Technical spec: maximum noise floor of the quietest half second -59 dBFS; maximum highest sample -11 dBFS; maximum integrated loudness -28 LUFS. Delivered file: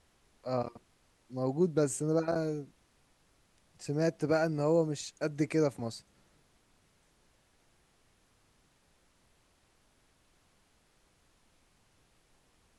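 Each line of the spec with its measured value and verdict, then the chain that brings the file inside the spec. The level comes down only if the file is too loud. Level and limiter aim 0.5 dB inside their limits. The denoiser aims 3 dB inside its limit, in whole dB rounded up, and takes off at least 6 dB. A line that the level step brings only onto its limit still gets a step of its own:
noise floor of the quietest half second -69 dBFS: OK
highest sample -16.0 dBFS: OK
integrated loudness -32.0 LUFS: OK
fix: none

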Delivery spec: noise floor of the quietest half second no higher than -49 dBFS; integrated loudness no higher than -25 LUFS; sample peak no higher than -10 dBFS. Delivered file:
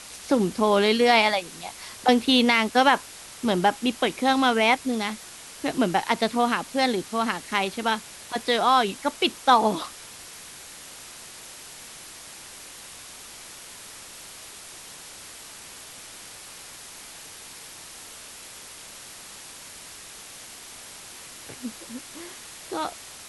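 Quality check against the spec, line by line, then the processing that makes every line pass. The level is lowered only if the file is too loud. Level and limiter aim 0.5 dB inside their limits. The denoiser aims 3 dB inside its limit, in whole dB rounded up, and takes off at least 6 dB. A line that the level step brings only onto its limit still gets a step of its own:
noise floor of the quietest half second -43 dBFS: fail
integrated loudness -23.0 LUFS: fail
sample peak -5.0 dBFS: fail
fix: denoiser 7 dB, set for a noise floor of -43 dBFS; gain -2.5 dB; limiter -10.5 dBFS

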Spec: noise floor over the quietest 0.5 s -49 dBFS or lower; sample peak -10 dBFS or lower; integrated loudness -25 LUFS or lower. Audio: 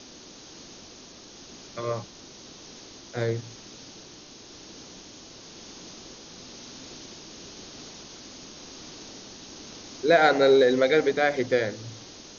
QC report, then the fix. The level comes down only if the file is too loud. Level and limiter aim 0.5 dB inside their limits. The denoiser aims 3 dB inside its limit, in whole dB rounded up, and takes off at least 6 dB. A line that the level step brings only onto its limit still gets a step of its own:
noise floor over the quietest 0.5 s -47 dBFS: fail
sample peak -7.5 dBFS: fail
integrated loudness -23.0 LUFS: fail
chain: gain -2.5 dB; limiter -10.5 dBFS

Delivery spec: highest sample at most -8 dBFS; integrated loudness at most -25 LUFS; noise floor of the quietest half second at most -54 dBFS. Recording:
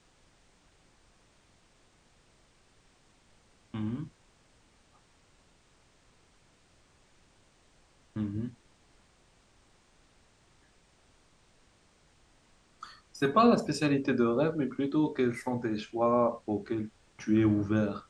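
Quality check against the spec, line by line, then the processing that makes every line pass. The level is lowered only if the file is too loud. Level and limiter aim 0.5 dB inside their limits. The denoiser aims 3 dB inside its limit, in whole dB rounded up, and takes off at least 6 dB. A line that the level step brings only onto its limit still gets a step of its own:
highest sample -11.5 dBFS: OK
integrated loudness -29.5 LUFS: OK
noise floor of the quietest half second -65 dBFS: OK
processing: none

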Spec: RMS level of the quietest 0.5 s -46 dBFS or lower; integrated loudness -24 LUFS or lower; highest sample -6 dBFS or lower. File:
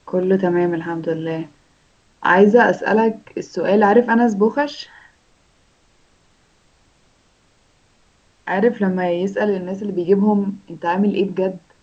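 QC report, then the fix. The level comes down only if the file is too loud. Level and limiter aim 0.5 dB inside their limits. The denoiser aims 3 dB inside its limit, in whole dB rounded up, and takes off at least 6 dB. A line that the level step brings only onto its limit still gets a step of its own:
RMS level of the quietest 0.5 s -58 dBFS: OK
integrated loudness -18.0 LUFS: fail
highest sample -2.0 dBFS: fail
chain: gain -6.5 dB

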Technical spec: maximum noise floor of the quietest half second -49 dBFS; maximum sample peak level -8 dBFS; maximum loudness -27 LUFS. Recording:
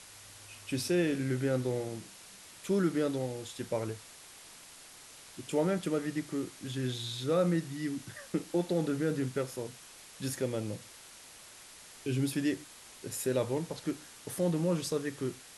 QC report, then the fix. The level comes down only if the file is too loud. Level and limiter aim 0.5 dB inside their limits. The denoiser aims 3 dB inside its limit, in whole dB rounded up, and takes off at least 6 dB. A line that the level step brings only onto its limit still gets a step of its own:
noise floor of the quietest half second -53 dBFS: OK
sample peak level -17.5 dBFS: OK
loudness -33.5 LUFS: OK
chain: none

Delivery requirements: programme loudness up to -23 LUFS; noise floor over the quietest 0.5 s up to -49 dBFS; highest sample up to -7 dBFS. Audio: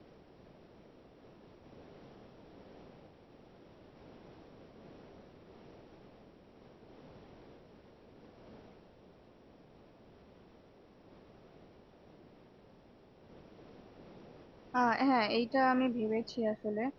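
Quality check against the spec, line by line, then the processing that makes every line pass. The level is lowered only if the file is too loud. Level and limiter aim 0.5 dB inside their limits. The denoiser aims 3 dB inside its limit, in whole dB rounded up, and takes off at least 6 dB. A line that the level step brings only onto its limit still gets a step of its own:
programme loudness -32.0 LUFS: OK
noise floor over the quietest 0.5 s -60 dBFS: OK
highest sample -17.5 dBFS: OK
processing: none

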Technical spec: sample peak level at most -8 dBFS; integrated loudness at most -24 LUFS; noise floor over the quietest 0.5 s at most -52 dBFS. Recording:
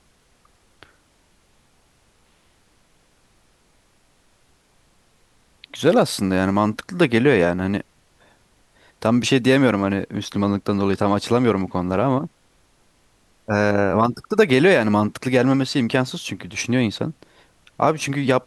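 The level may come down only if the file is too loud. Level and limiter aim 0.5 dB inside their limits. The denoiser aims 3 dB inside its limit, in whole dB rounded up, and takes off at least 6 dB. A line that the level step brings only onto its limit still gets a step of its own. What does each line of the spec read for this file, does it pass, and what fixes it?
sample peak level -4.0 dBFS: fail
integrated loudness -20.0 LUFS: fail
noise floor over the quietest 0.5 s -60 dBFS: OK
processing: gain -4.5 dB

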